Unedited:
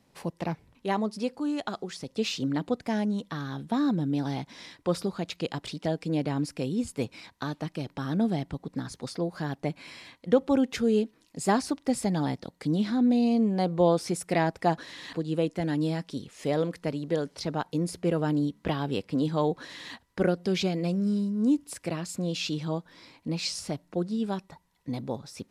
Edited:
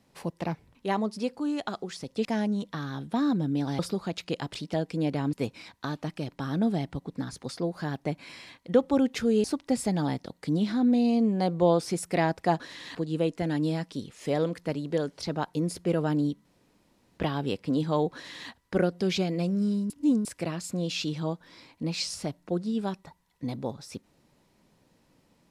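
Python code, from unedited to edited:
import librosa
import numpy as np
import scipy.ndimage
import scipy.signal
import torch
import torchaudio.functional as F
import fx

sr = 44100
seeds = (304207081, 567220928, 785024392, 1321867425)

y = fx.edit(x, sr, fx.cut(start_s=2.25, length_s=0.58),
    fx.cut(start_s=4.37, length_s=0.54),
    fx.cut(start_s=6.45, length_s=0.46),
    fx.cut(start_s=11.02, length_s=0.6),
    fx.insert_room_tone(at_s=18.63, length_s=0.73),
    fx.reverse_span(start_s=21.35, length_s=0.35), tone=tone)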